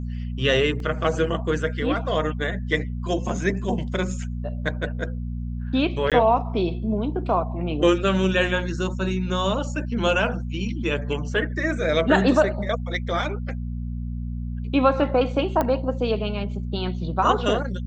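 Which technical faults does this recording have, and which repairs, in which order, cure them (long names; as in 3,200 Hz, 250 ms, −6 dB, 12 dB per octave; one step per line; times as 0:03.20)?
mains hum 60 Hz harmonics 4 −29 dBFS
0:00.80: drop-out 2.1 ms
0:06.10–0:06.12: drop-out 17 ms
0:15.61: click −10 dBFS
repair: click removal
hum removal 60 Hz, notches 4
repair the gap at 0:00.80, 2.1 ms
repair the gap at 0:06.10, 17 ms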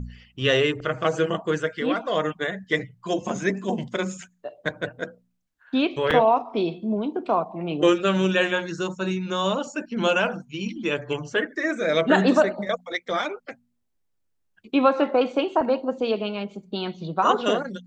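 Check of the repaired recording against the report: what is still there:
none of them is left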